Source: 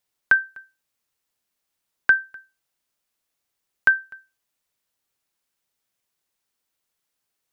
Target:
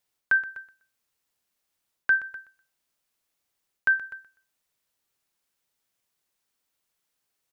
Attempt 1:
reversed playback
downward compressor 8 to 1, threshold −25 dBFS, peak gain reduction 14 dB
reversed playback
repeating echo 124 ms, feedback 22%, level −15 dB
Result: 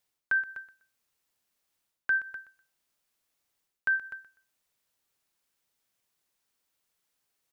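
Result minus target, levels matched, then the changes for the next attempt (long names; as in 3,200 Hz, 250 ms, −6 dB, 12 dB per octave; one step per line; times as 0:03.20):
downward compressor: peak gain reduction +5.5 dB
change: downward compressor 8 to 1, threshold −18.5 dBFS, peak gain reduction 8.5 dB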